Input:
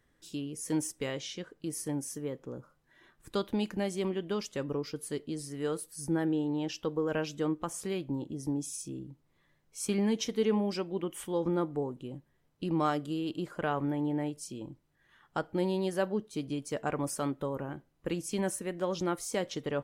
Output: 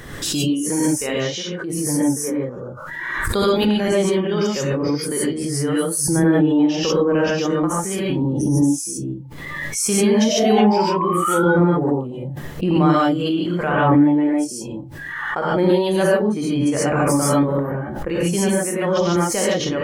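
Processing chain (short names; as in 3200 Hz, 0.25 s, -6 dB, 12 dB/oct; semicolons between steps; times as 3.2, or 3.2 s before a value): painted sound rise, 10.18–11.42, 590–1500 Hz -36 dBFS; non-linear reverb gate 0.17 s rising, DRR -5.5 dB; spectral noise reduction 13 dB; backwards sustainer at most 29 dB/s; gain +6.5 dB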